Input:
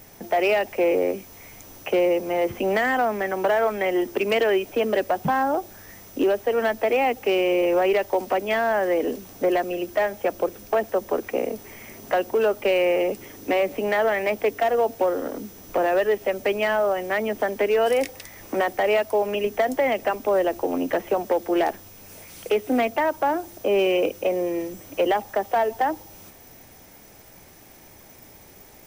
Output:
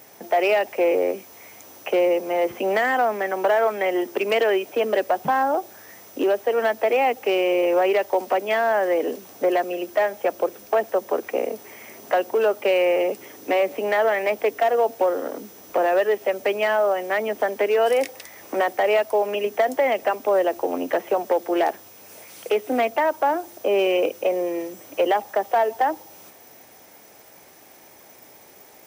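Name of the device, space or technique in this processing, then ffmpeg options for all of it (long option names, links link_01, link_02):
filter by subtraction: -filter_complex "[0:a]asplit=2[link_01][link_02];[link_02]lowpass=570,volume=-1[link_03];[link_01][link_03]amix=inputs=2:normalize=0"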